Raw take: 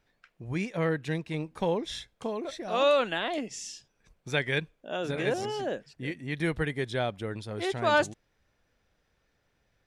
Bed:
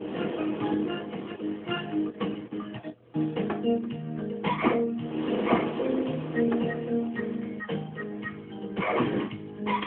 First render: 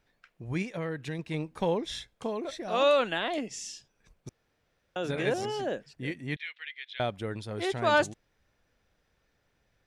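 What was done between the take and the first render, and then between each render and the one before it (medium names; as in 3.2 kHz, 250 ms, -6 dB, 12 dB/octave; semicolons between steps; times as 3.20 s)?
0.62–1.19 s: compression 2.5:1, threshold -32 dBFS; 4.29–4.96 s: room tone; 6.36–7.00 s: Butterworth band-pass 2.8 kHz, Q 1.6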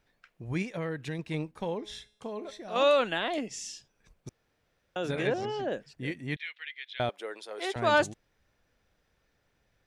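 1.51–2.76 s: feedback comb 210 Hz, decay 0.59 s, mix 50%; 5.27–5.72 s: distance through air 130 m; 7.09–7.76 s: high-pass 410 Hz 24 dB/octave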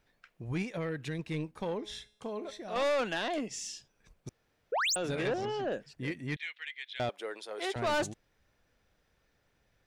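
4.72–4.96 s: painted sound rise 410–9500 Hz -27 dBFS; saturation -26 dBFS, distortion -9 dB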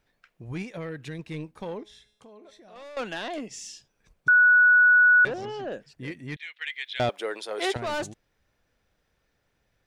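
1.83–2.97 s: compression 2:1, threshold -56 dBFS; 4.28–5.25 s: bleep 1.47 kHz -13.5 dBFS; 6.61–7.77 s: gain +8 dB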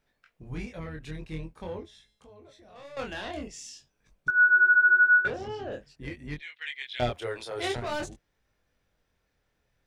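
octave divider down 2 oct, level -4 dB; chorus 0.47 Hz, delay 20 ms, depth 6.3 ms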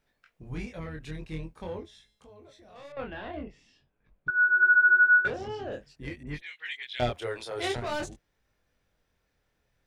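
2.92–4.63 s: distance through air 440 m; 6.23–6.83 s: phase dispersion highs, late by 44 ms, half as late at 2.6 kHz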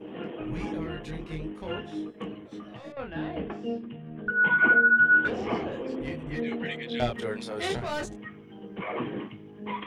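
add bed -6.5 dB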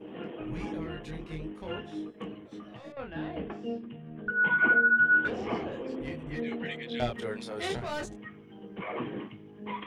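trim -3 dB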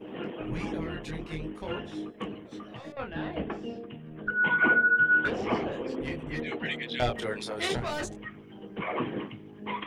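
de-hum 46.69 Hz, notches 18; harmonic-percussive split percussive +7 dB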